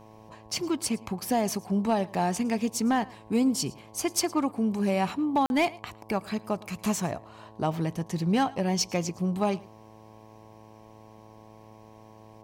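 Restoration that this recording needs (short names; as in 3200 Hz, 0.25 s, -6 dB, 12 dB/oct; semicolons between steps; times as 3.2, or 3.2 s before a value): clip repair -16.5 dBFS; de-hum 109.1 Hz, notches 10; interpolate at 5.46, 41 ms; inverse comb 0.11 s -22.5 dB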